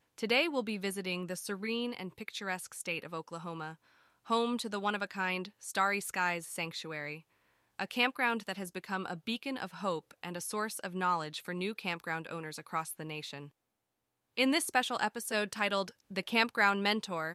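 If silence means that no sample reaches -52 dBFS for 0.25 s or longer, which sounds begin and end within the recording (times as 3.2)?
4.26–7.2
7.79–13.49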